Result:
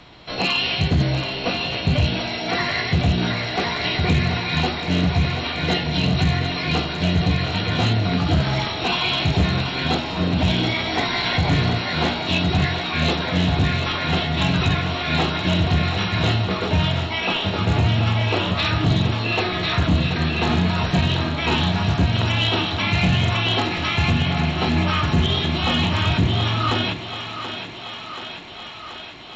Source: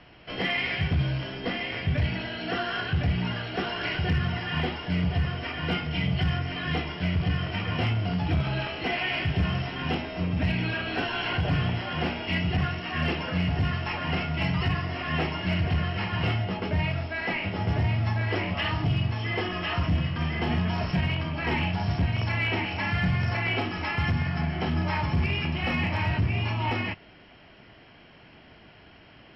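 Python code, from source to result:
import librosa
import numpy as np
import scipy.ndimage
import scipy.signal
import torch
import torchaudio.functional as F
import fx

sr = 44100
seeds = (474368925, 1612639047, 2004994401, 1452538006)

p1 = fx.formant_shift(x, sr, semitones=5)
p2 = p1 + fx.echo_thinned(p1, sr, ms=731, feedback_pct=74, hz=270.0, wet_db=-9.0, dry=0)
y = F.gain(torch.from_numpy(p2), 6.5).numpy()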